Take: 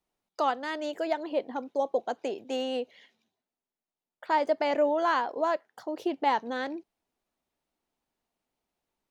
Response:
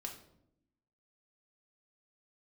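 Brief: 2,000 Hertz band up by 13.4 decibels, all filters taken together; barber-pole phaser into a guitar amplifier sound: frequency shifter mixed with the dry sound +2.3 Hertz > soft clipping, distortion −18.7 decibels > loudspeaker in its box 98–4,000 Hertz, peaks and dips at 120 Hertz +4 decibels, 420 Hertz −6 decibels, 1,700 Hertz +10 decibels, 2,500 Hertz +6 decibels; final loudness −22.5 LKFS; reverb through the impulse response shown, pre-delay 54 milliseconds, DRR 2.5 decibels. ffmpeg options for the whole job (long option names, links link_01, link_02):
-filter_complex "[0:a]equalizer=frequency=2000:width_type=o:gain=7,asplit=2[link_01][link_02];[1:a]atrim=start_sample=2205,adelay=54[link_03];[link_02][link_03]afir=irnorm=-1:irlink=0,volume=0dB[link_04];[link_01][link_04]amix=inputs=2:normalize=0,asplit=2[link_05][link_06];[link_06]afreqshift=2.3[link_07];[link_05][link_07]amix=inputs=2:normalize=1,asoftclip=threshold=-18.5dB,highpass=98,equalizer=frequency=120:width_type=q:width=4:gain=4,equalizer=frequency=420:width_type=q:width=4:gain=-6,equalizer=frequency=1700:width_type=q:width=4:gain=10,equalizer=frequency=2500:width_type=q:width=4:gain=6,lowpass=frequency=4000:width=0.5412,lowpass=frequency=4000:width=1.3066,volume=5dB"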